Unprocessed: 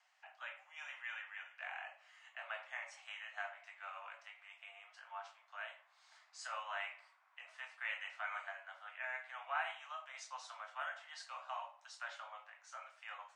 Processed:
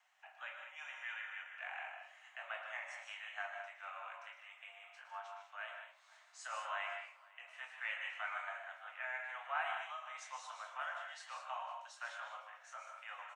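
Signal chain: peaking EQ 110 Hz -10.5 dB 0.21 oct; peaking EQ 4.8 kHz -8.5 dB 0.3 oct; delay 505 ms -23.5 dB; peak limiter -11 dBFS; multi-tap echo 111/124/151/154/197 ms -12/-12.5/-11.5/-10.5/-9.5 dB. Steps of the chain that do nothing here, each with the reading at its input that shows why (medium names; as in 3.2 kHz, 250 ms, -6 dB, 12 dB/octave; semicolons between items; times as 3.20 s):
peaking EQ 110 Hz: input has nothing below 480 Hz; peak limiter -11 dBFS: peak at its input -26.0 dBFS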